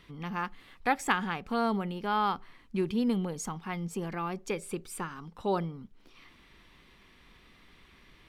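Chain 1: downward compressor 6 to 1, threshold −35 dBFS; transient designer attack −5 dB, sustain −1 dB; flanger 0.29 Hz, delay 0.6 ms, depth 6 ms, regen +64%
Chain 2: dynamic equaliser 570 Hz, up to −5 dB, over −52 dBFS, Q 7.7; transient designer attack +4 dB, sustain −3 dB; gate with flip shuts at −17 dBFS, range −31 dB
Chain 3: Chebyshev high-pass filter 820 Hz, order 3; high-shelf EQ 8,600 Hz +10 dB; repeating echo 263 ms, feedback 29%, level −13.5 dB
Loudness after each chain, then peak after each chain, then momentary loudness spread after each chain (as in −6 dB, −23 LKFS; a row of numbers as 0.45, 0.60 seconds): −45.5, −34.5, −36.0 LKFS; −29.5, −15.0, −12.5 dBFS; 19, 11, 14 LU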